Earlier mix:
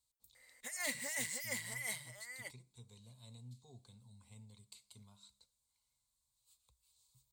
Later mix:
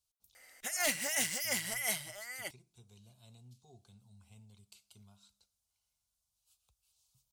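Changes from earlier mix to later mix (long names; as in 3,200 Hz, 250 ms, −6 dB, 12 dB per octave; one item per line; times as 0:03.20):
background +8.5 dB
master: remove EQ curve with evenly spaced ripples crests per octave 1, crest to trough 9 dB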